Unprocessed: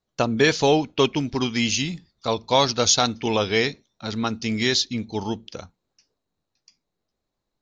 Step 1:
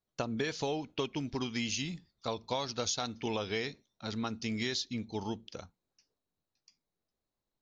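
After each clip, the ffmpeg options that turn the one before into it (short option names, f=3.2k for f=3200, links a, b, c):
-af "acompressor=threshold=-22dB:ratio=6,volume=-8.5dB"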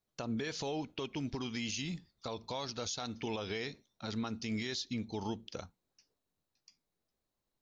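-af "alimiter=level_in=6dB:limit=-24dB:level=0:latency=1:release=89,volume=-6dB,volume=1.5dB"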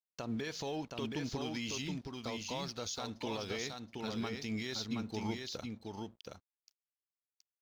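-filter_complex "[0:a]aeval=exprs='sgn(val(0))*max(abs(val(0))-0.00133,0)':c=same,asplit=2[a][b];[b]aecho=0:1:723:0.631[c];[a][c]amix=inputs=2:normalize=0,volume=-1dB"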